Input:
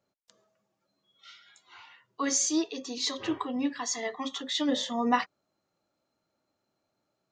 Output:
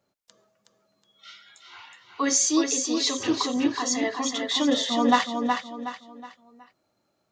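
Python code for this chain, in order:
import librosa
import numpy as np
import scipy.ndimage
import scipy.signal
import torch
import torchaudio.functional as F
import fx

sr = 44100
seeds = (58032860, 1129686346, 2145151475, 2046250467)

y = fx.echo_feedback(x, sr, ms=369, feedback_pct=36, wet_db=-5.0)
y = F.gain(torch.from_numpy(y), 5.0).numpy()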